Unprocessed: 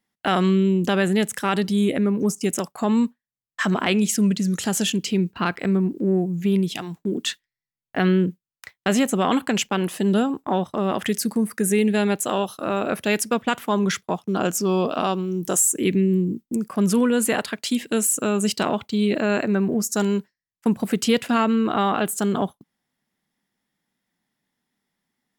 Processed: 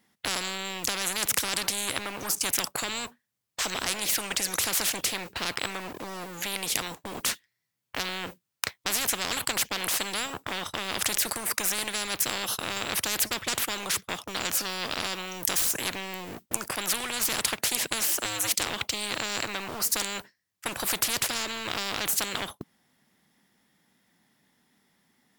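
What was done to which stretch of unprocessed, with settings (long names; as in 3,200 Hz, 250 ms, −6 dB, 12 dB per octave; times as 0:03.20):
0:18.07–0:18.70: frequency shifter +110 Hz
whole clip: high-pass filter 49 Hz 6 dB per octave; leveller curve on the samples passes 1; every bin compressed towards the loudest bin 10 to 1; level +6.5 dB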